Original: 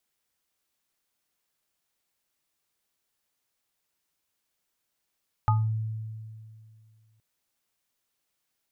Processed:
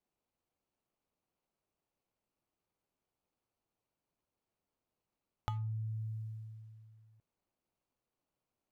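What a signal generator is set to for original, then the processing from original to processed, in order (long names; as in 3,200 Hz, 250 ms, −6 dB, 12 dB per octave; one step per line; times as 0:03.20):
inharmonic partials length 1.72 s, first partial 110 Hz, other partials 863/1,240 Hz, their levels −2/−5 dB, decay 2.33 s, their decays 0.26/0.25 s, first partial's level −19 dB
running median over 25 samples
downward compressor 5 to 1, threshold −37 dBFS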